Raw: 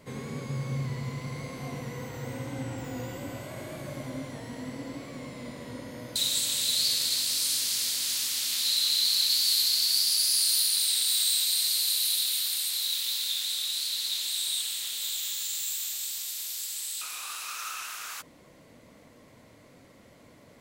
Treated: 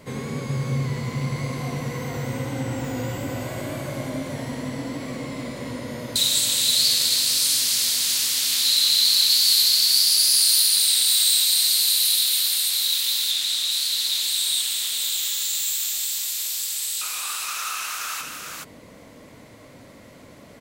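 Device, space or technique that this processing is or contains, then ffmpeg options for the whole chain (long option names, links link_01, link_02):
ducked delay: -filter_complex "[0:a]asettb=1/sr,asplit=3[link_01][link_02][link_03];[link_01]atrim=end=13.314[link_04];[link_02]atrim=start=13.31:end=13.71,asetpts=PTS-STARTPTS,afade=type=in:duration=0.004:curve=qsin,afade=type=out:start_time=0.396:duration=0.004:curve=qsin,lowpass=10000[link_05];[link_03]atrim=start=13.706[link_06];[link_04][link_05]acrossfade=duration=0.004:curve1=hsin:curve2=qsin[link_07];[link_07][link_06]acrossfade=duration=0.004:curve1=qsin:curve2=hsin,asplit=3[link_08][link_09][link_10];[link_09]adelay=424,volume=-4dB[link_11];[link_10]apad=whole_len=927482[link_12];[link_11][link_12]sidechaincompress=threshold=-35dB:ratio=8:attack=16:release=149[link_13];[link_08][link_13]amix=inputs=2:normalize=0,volume=7dB"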